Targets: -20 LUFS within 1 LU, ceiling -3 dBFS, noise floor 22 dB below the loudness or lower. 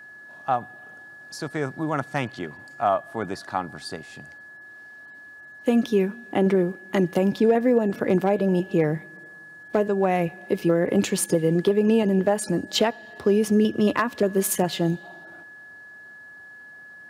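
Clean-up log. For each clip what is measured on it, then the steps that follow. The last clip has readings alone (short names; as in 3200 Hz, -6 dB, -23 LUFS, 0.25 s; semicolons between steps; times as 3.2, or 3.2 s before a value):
steady tone 1700 Hz; tone level -42 dBFS; loudness -23.5 LUFS; peak -9.5 dBFS; loudness target -20.0 LUFS
-> notch 1700 Hz, Q 30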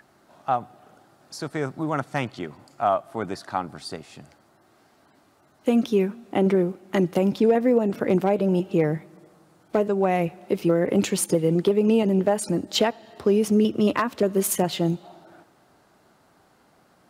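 steady tone none; loudness -23.5 LUFS; peak -10.0 dBFS; loudness target -20.0 LUFS
-> gain +3.5 dB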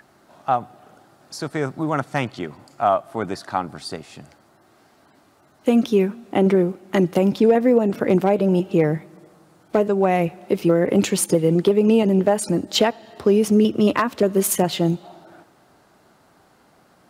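loudness -20.0 LUFS; peak -6.5 dBFS; noise floor -56 dBFS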